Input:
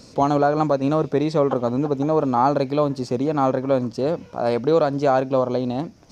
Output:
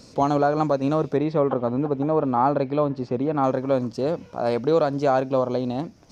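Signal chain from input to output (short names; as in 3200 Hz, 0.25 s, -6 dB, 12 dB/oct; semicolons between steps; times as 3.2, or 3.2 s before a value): 1.17–3.44 LPF 2800 Hz 12 dB/oct; gain -2 dB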